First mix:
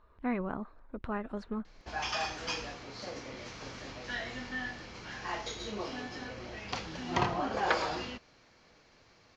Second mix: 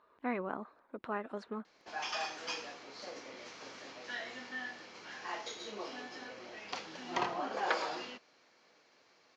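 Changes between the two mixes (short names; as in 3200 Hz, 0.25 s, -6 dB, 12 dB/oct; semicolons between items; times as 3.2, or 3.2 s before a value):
background -3.5 dB; master: add HPF 300 Hz 12 dB/oct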